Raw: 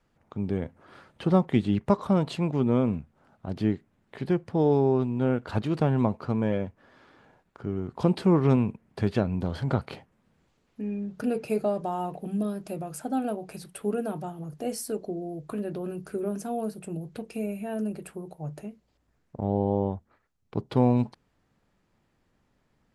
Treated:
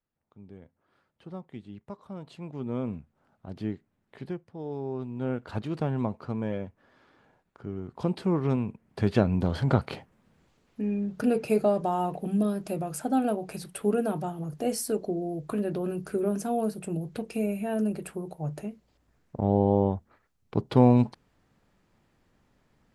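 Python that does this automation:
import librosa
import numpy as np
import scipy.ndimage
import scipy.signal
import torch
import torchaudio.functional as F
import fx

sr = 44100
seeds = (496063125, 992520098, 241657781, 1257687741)

y = fx.gain(x, sr, db=fx.line((2.03, -19.0), (2.85, -7.0), (4.24, -7.0), (4.51, -16.5), (5.31, -5.0), (8.65, -5.0), (9.21, 3.0)))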